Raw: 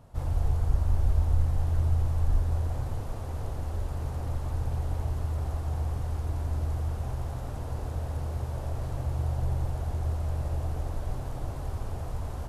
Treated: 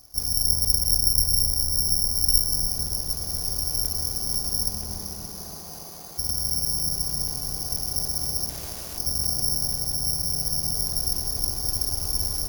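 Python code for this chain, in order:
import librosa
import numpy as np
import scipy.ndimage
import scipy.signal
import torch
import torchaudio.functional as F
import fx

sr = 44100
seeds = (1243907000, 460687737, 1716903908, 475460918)

p1 = fx.lower_of_two(x, sr, delay_ms=2.7)
p2 = fx.rider(p1, sr, range_db=10, speed_s=2.0)
p3 = p1 + (p2 * 10.0 ** (2.5 / 20.0))
p4 = fx.highpass(p3, sr, hz=fx.line((4.68, 110.0), (6.17, 480.0)), slope=12, at=(4.68, 6.17), fade=0.02)
p5 = fx.bass_treble(p4, sr, bass_db=-12, treble_db=14, at=(8.49, 8.98))
p6 = (np.kron(p5[::8], np.eye(8)[0]) * 8)[:len(p5)]
p7 = p6 + fx.echo_bbd(p6, sr, ms=286, stages=2048, feedback_pct=55, wet_db=-3.0, dry=0)
p8 = fx.buffer_crackle(p7, sr, first_s=0.91, period_s=0.49, block=128, kind='zero')
y = p8 * 10.0 ** (-12.5 / 20.0)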